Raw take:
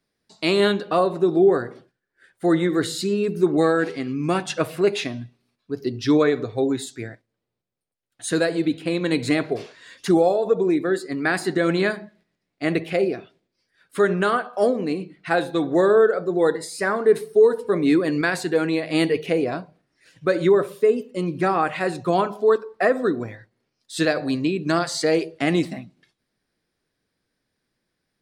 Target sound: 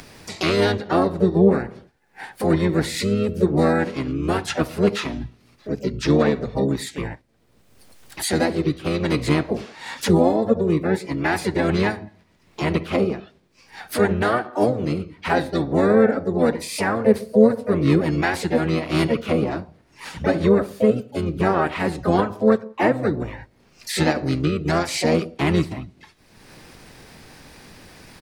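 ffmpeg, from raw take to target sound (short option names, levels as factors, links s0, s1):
-filter_complex "[0:a]asplit=4[s0][s1][s2][s3];[s1]asetrate=22050,aresample=44100,atempo=2,volume=0.891[s4];[s2]asetrate=52444,aresample=44100,atempo=0.840896,volume=0.501[s5];[s3]asetrate=66075,aresample=44100,atempo=0.66742,volume=0.224[s6];[s0][s4][s5][s6]amix=inputs=4:normalize=0,acompressor=mode=upward:threshold=0.141:ratio=2.5,volume=0.75"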